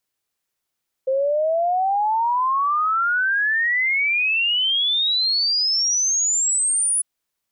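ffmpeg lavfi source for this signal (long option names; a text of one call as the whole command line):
ffmpeg -f lavfi -i "aevalsrc='0.141*clip(min(t,5.95-t)/0.01,0,1)*sin(2*PI*520*5.95/log(10000/520)*(exp(log(10000/520)*t/5.95)-1))':duration=5.95:sample_rate=44100" out.wav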